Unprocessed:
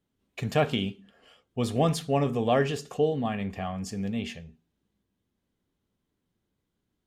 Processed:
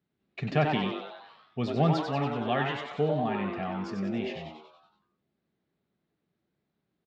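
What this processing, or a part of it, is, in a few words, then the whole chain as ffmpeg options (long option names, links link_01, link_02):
frequency-shifting delay pedal into a guitar cabinet: -filter_complex "[0:a]asettb=1/sr,asplit=3[link_01][link_02][link_03];[link_01]atrim=end=2.014[link_04];[link_02]atrim=start=2.01:end=2.93,asetpts=PTS-STARTPTS,afade=type=in:duration=0.004:curve=qsin,afade=type=out:start_time=0.916:duration=0.004:curve=qsin,equalizer=frequency=160:width_type=o:width=0.33:gain=-11,equalizer=frequency=400:width_type=o:width=0.33:gain=-12,equalizer=frequency=630:width_type=o:width=0.33:gain=-5,equalizer=frequency=3150:width_type=o:width=0.33:gain=5,equalizer=frequency=5000:width_type=o:width=0.33:gain=-10[link_05];[link_03]atrim=start=2.926[link_06];[link_04][link_05]acrossfade=duration=0.004:curve1=hsin:curve2=qsin[link_07];[link_07][link_06]acrossfade=duration=0.004:curve1=qsin:curve2=hsin,asplit=8[link_08][link_09][link_10][link_11][link_12][link_13][link_14][link_15];[link_09]adelay=94,afreqshift=150,volume=-5dB[link_16];[link_10]adelay=188,afreqshift=300,volume=-10.4dB[link_17];[link_11]adelay=282,afreqshift=450,volume=-15.7dB[link_18];[link_12]adelay=376,afreqshift=600,volume=-21.1dB[link_19];[link_13]adelay=470,afreqshift=750,volume=-26.4dB[link_20];[link_14]adelay=564,afreqshift=900,volume=-31.8dB[link_21];[link_15]adelay=658,afreqshift=1050,volume=-37.1dB[link_22];[link_08][link_16][link_17][link_18][link_19][link_20][link_21][link_22]amix=inputs=8:normalize=0,highpass=96,equalizer=frequency=97:width_type=q:width=4:gain=-7,equalizer=frequency=150:width_type=q:width=4:gain=4,equalizer=frequency=270:width_type=q:width=4:gain=-4,equalizer=frequency=510:width_type=q:width=4:gain=-7,equalizer=frequency=970:width_type=q:width=4:gain=-5,equalizer=frequency=3200:width_type=q:width=4:gain=-6,lowpass=frequency=4300:width=0.5412,lowpass=frequency=4300:width=1.3066"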